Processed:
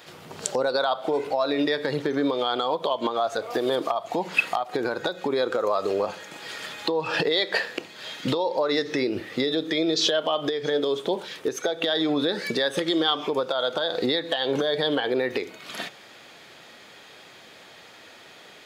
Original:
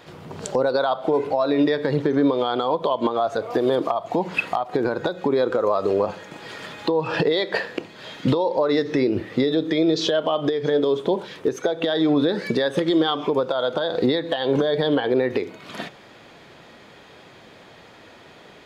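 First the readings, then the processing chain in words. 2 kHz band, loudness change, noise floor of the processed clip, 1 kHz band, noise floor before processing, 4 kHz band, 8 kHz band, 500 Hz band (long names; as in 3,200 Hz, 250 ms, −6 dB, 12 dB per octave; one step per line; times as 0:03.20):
+1.0 dB, −3.5 dB, −48 dBFS, −2.5 dB, −47 dBFS, +3.0 dB, can't be measured, −4.0 dB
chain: spectral tilt +2.5 dB per octave
notch filter 1,000 Hz, Q 18
level −1.5 dB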